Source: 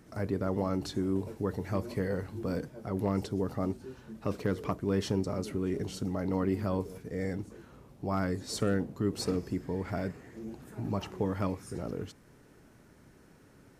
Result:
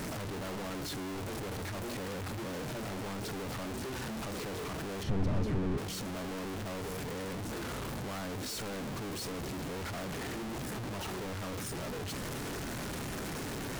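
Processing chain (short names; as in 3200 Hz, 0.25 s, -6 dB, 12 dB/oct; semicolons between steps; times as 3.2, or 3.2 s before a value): infinite clipping; 5.03–5.78 RIAA curve playback; Doppler distortion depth 0.11 ms; gain -4.5 dB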